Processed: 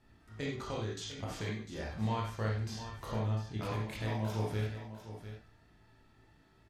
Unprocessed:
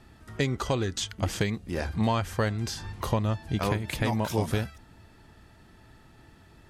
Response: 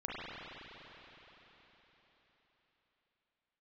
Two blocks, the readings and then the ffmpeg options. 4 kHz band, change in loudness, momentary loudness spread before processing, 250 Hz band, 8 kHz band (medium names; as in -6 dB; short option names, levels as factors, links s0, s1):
-9.5 dB, -8.5 dB, 6 LU, -9.5 dB, -12.0 dB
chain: -filter_complex "[0:a]aecho=1:1:102|700:0.224|0.266[s0];[1:a]atrim=start_sample=2205,afade=t=out:st=0.22:d=0.01,atrim=end_sample=10143,asetrate=79380,aresample=44100[s1];[s0][s1]afir=irnorm=-1:irlink=0,volume=0.501"